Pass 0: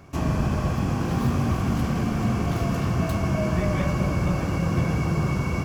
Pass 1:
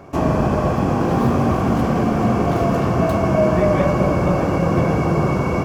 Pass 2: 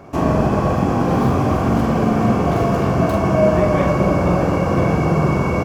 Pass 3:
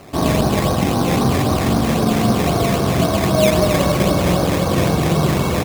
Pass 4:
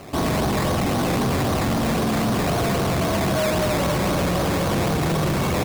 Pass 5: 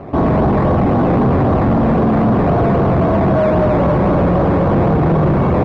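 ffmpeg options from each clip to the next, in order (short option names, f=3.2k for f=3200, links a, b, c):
-af "equalizer=f=560:t=o:w=2.8:g=13"
-filter_complex "[0:a]asplit=2[a][b];[b]adelay=45,volume=-6dB[c];[a][c]amix=inputs=2:normalize=0"
-af "acrusher=samples=12:mix=1:aa=0.000001:lfo=1:lforange=7.2:lforate=3.8"
-af "asoftclip=type=hard:threshold=-20.5dB,volume=1dB"
-af "lowpass=1.1k,volume=9dB"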